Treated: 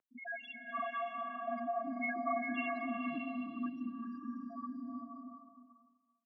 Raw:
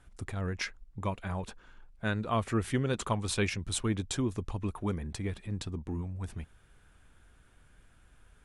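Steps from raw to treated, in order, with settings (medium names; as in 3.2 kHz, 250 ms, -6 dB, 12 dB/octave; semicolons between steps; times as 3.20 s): every event in the spectrogram widened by 120 ms; inharmonic resonator 320 Hz, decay 0.26 s, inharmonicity 0.008; loudest bins only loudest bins 2; delay 528 ms -11.5 dB; compression 3:1, threshold -54 dBFS, peak gain reduction 12.5 dB; mistuned SSB -140 Hz 360–2100 Hz; speed mistake 33 rpm record played at 45 rpm; swelling reverb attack 620 ms, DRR 0.5 dB; trim +17 dB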